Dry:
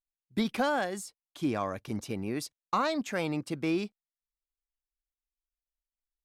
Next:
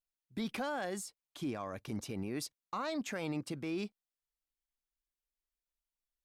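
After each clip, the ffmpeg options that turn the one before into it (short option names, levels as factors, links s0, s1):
-af "alimiter=level_in=1.5:limit=0.0631:level=0:latency=1:release=43,volume=0.668,volume=0.794"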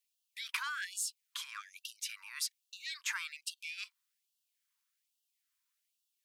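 -af "acompressor=threshold=0.0112:ratio=6,afftfilt=real='re*gte(b*sr/1024,860*pow(2700/860,0.5+0.5*sin(2*PI*1.2*pts/sr)))':imag='im*gte(b*sr/1024,860*pow(2700/860,0.5+0.5*sin(2*PI*1.2*pts/sr)))':win_size=1024:overlap=0.75,volume=3.35"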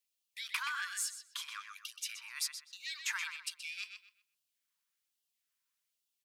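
-filter_complex "[0:a]asplit=2[s0][s1];[s1]aeval=exprs='sgn(val(0))*max(abs(val(0))-0.00211,0)':c=same,volume=0.299[s2];[s0][s2]amix=inputs=2:normalize=0,asplit=2[s3][s4];[s4]adelay=126,lowpass=f=3700:p=1,volume=0.531,asplit=2[s5][s6];[s6]adelay=126,lowpass=f=3700:p=1,volume=0.3,asplit=2[s7][s8];[s8]adelay=126,lowpass=f=3700:p=1,volume=0.3,asplit=2[s9][s10];[s10]adelay=126,lowpass=f=3700:p=1,volume=0.3[s11];[s3][s5][s7][s9][s11]amix=inputs=5:normalize=0,volume=0.794"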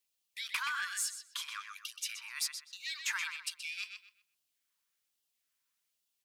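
-af "asoftclip=type=tanh:threshold=0.0501,volume=1.33"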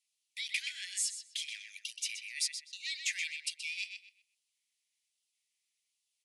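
-af "asuperpass=centerf=5000:order=20:qfactor=0.55,volume=1.26"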